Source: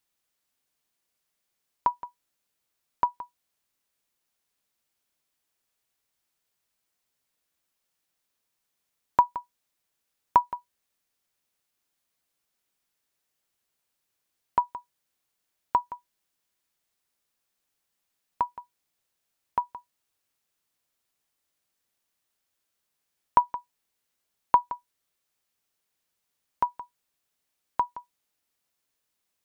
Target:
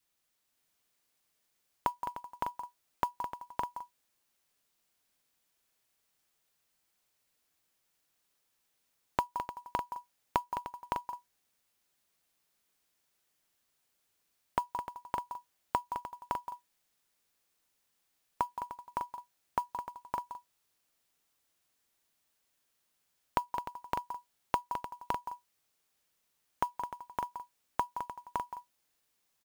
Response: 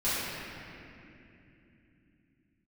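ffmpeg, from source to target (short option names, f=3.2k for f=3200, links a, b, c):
-filter_complex "[0:a]adynamicequalizer=threshold=0.0112:dfrequency=800:dqfactor=4.5:tfrequency=800:tqfactor=4.5:attack=5:release=100:ratio=0.375:range=3:mode=boostabove:tftype=bell,acompressor=threshold=-27dB:ratio=20,acrusher=bits=5:mode=log:mix=0:aa=0.000001,asplit=2[a][b];[b]aecho=0:1:211|302|562|603:0.335|0.224|0.631|0.355[c];[a][c]amix=inputs=2:normalize=0"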